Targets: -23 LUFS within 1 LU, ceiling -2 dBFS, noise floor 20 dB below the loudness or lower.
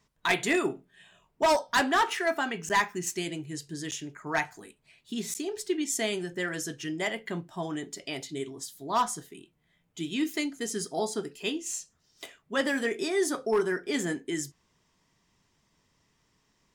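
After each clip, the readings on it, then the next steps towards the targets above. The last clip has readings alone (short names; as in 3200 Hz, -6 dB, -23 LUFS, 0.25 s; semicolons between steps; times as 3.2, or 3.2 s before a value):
clipped 0.4%; flat tops at -18.5 dBFS; dropouts 3; longest dropout 8.8 ms; loudness -30.5 LUFS; peak -18.5 dBFS; loudness target -23.0 LUFS
-> clip repair -18.5 dBFS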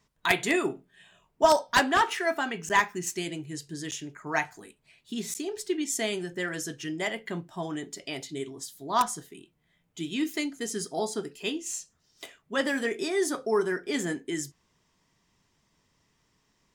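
clipped 0.0%; dropouts 3; longest dropout 8.8 ms
-> interpolate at 2.69/3.91/5.34, 8.8 ms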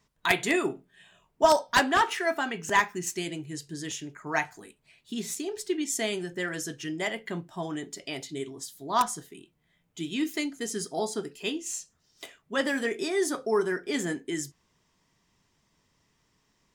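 dropouts 0; loudness -29.5 LUFS; peak -9.5 dBFS; loudness target -23.0 LUFS
-> gain +6.5 dB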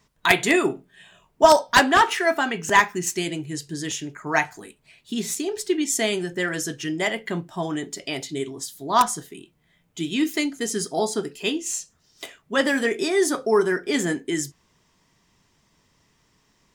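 loudness -23.0 LUFS; peak -3.0 dBFS; noise floor -65 dBFS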